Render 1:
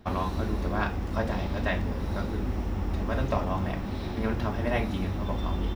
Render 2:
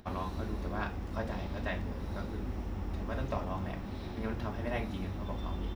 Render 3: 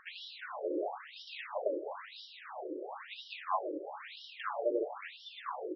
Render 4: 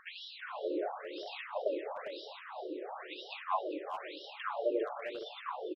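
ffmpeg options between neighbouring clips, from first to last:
-af "acompressor=mode=upward:threshold=0.00708:ratio=2.5,volume=0.422"
-af "afftfilt=real='re*between(b*sr/1024,410*pow(4100/410,0.5+0.5*sin(2*PI*1*pts/sr))/1.41,410*pow(4100/410,0.5+0.5*sin(2*PI*1*pts/sr))*1.41)':imag='im*between(b*sr/1024,410*pow(4100/410,0.5+0.5*sin(2*PI*1*pts/sr))/1.41,410*pow(4100/410,0.5+0.5*sin(2*PI*1*pts/sr))*1.41)':win_size=1024:overlap=0.75,volume=3.16"
-filter_complex "[0:a]asplit=2[s0][s1];[s1]adelay=400,highpass=300,lowpass=3400,asoftclip=type=hard:threshold=0.0376,volume=0.398[s2];[s0][s2]amix=inputs=2:normalize=0"

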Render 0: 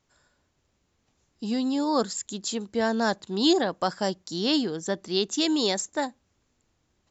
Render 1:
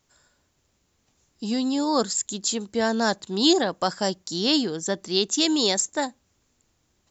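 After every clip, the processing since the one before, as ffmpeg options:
-af "highshelf=f=5900:g=9.5,volume=1.19"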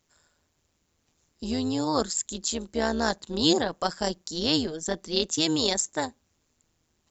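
-af "tremolo=f=160:d=0.71"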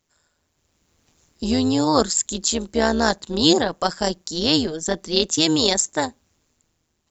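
-af "dynaudnorm=f=190:g=9:m=4.73,volume=0.891"

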